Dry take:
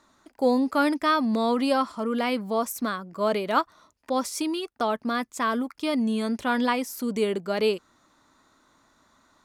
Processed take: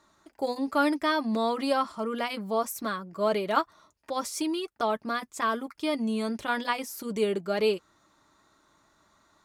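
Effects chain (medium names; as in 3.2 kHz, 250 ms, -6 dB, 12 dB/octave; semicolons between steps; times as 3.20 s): comb of notches 250 Hz; trim -1 dB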